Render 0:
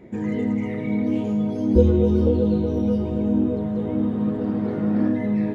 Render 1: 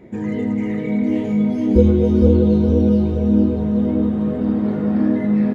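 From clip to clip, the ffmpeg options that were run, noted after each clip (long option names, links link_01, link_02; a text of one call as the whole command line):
ffmpeg -i in.wav -af "aecho=1:1:457|914|1371|1828|2285:0.531|0.228|0.0982|0.0422|0.0181,volume=2dB" out.wav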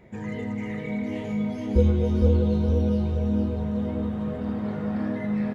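ffmpeg -i in.wav -af "equalizer=frequency=300:width_type=o:width=1.2:gain=-12.5,volume=-2.5dB" out.wav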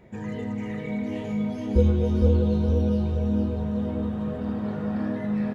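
ffmpeg -i in.wav -af "bandreject=frequency=2100:width=12" out.wav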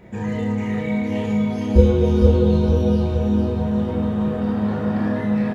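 ffmpeg -i in.wav -af "aecho=1:1:30|66|109.2|161|223.2:0.631|0.398|0.251|0.158|0.1,volume=6dB" out.wav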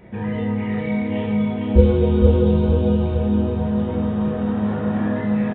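ffmpeg -i in.wav -af "aresample=8000,aresample=44100" out.wav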